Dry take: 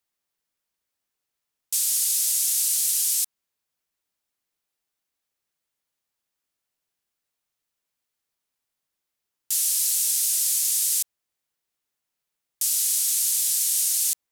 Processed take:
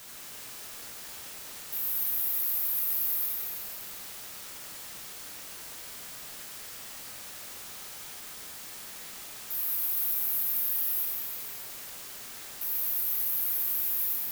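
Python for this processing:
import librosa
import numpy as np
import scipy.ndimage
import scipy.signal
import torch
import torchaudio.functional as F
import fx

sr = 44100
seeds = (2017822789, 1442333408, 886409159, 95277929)

y = scipy.signal.sosfilt(scipy.signal.cheby2(4, 80, [1900.0, 5300.0], 'bandstop', fs=sr, output='sos'), x)
y = fx.quant_dither(y, sr, seeds[0], bits=8, dither='triangular')
y = fx.rev_plate(y, sr, seeds[1], rt60_s=2.7, hf_ratio=0.9, predelay_ms=0, drr_db=-4.0)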